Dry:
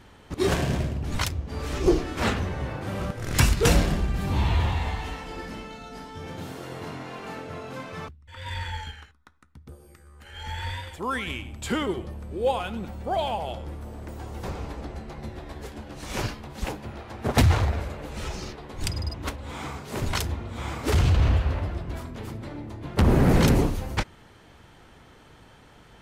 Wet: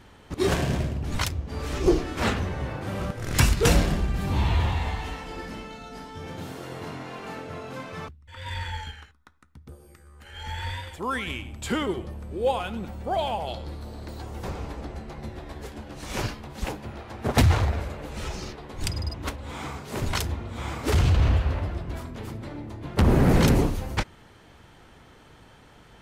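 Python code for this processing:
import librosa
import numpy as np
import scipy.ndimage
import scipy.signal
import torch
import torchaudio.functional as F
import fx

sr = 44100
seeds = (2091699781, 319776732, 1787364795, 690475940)

y = fx.peak_eq(x, sr, hz=4200.0, db=15.0, octaves=0.36, at=(13.47, 14.22))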